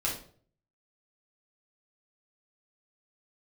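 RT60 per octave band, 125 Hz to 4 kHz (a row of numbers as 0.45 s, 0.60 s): 0.70 s, 0.55 s, 0.55 s, 0.45 s, 0.40 s, 0.35 s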